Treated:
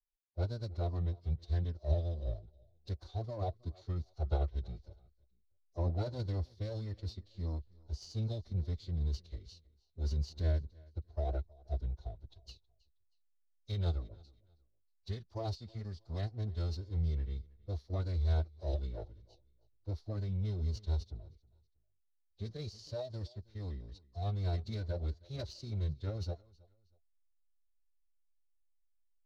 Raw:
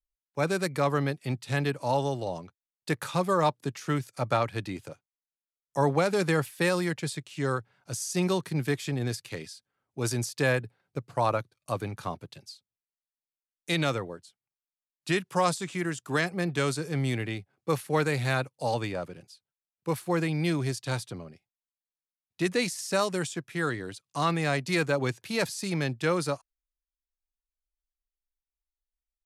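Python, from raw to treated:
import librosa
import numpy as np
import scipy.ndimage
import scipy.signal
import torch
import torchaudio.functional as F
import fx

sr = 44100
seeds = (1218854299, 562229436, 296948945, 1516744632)

p1 = scipy.signal.medfilt(x, 3)
p2 = fx.curve_eq(p1, sr, hz=(100.0, 440.0, 640.0, 2600.0, 4800.0, 8200.0), db=(0, -10, 12, -16, 11, -26))
p3 = p2 + fx.echo_feedback(p2, sr, ms=319, feedback_pct=29, wet_db=-22.5, dry=0)
p4 = fx.pitch_keep_formants(p3, sr, semitones=-8.5)
p5 = fx.tone_stack(p4, sr, knobs='10-0-1')
p6 = fx.backlash(p5, sr, play_db=-48.0)
p7 = p5 + (p6 * 10.0 ** (-7.5 / 20.0))
y = p7 * 10.0 ** (6.5 / 20.0)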